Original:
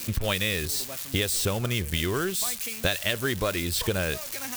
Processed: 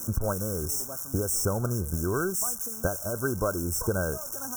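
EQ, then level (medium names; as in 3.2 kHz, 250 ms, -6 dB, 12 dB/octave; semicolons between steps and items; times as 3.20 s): brick-wall FIR band-stop 1.6–5.3 kHz; 0.0 dB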